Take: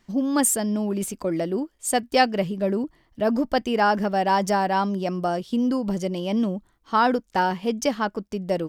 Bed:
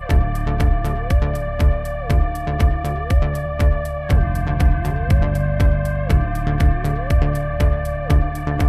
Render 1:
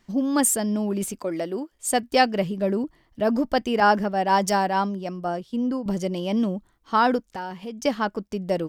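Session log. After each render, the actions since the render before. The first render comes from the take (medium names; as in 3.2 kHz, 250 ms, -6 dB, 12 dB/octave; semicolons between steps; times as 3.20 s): 1.19–1.72 s: high-pass 360 Hz 6 dB/octave; 3.80–5.86 s: three bands expanded up and down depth 100%; 7.23–7.85 s: compression 2:1, threshold -38 dBFS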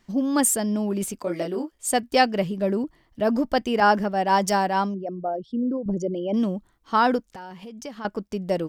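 1.22–1.71 s: doubling 23 ms -3 dB; 4.94–6.34 s: resonances exaggerated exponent 2; 7.22–8.05 s: compression 2.5:1, threshold -38 dBFS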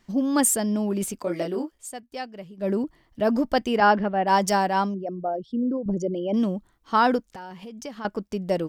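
1.77–2.70 s: dip -15.5 dB, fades 0.13 s; 3.77–4.26 s: low-pass 5.7 kHz -> 2.6 kHz 24 dB/octave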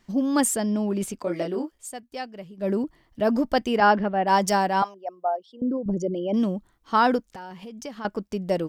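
0.44–1.64 s: treble shelf 9.7 kHz -9.5 dB; 4.82–5.62 s: resonant high-pass 870 Hz, resonance Q 2.7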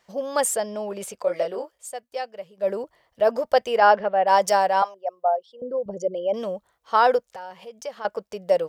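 high-pass 50 Hz; resonant low shelf 390 Hz -9.5 dB, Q 3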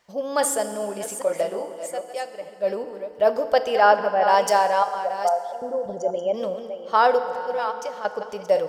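chunks repeated in reverse 407 ms, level -9.5 dB; FDN reverb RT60 2.9 s, high-frequency decay 0.7×, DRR 9 dB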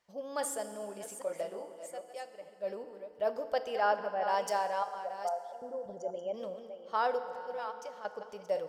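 trim -13 dB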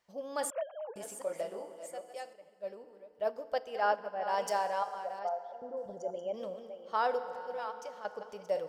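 0.50–0.96 s: formants replaced by sine waves; 2.33–4.38 s: upward expansion, over -40 dBFS; 5.19–5.77 s: distance through air 180 m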